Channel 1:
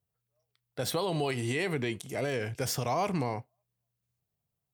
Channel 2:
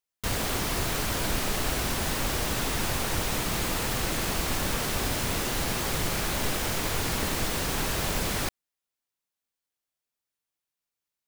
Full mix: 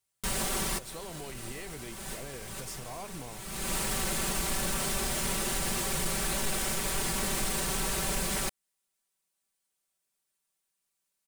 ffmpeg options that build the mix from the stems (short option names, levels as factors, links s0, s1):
-filter_complex "[0:a]volume=0.224,asplit=2[s0][s1];[1:a]aecho=1:1:5.2:0.86,asoftclip=type=hard:threshold=0.126,volume=1.12[s2];[s1]apad=whole_len=497566[s3];[s2][s3]sidechaincompress=threshold=0.00112:ratio=16:attack=9:release=440[s4];[s0][s4]amix=inputs=2:normalize=0,equalizer=f=8900:w=1.6:g=8,alimiter=limit=0.0794:level=0:latency=1:release=204"